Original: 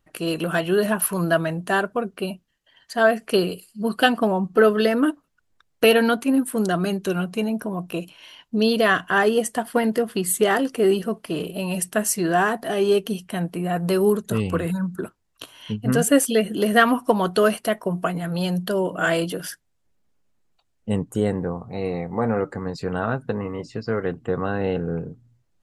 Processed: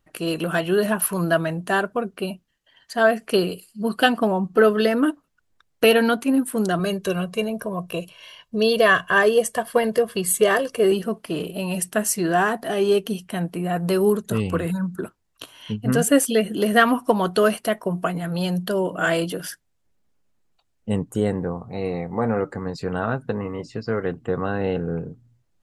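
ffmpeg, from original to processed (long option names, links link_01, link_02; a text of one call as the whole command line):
ffmpeg -i in.wav -filter_complex "[0:a]asettb=1/sr,asplit=3[link_01][link_02][link_03];[link_01]atrim=end=6.794[link_04];[link_02]atrim=start=6.79:end=10.92,asetpts=PTS-STARTPTS,afade=type=in:duration=0.004:curve=qsin,afade=type=out:start_time=4.126:duration=0.004:curve=qsin,aecho=1:1:1.8:0.65,atrim=end_sample=182133[link_05];[link_03]atrim=start=10.916[link_06];[link_04][link_05]acrossfade=duration=0.004:curve1=hsin:curve2=qsin[link_07];[link_07][link_06]acrossfade=duration=0.004:curve1=qsin:curve2=hsin" out.wav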